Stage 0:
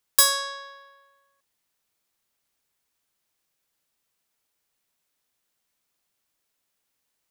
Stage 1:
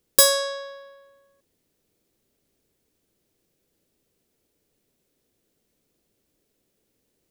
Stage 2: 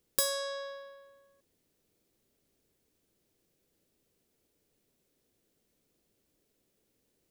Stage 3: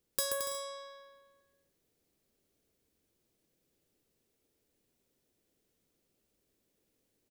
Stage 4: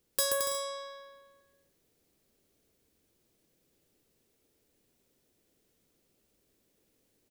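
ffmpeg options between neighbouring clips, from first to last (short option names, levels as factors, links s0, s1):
-af "lowshelf=f=640:t=q:w=1.5:g=13.5,volume=1.26"
-af "acompressor=threshold=0.0251:ratio=2,volume=0.708"
-af "aecho=1:1:130|221|284.7|329.3|360.5:0.631|0.398|0.251|0.158|0.1,volume=0.596"
-af "asoftclip=type=hard:threshold=0.0501,volume=1.78"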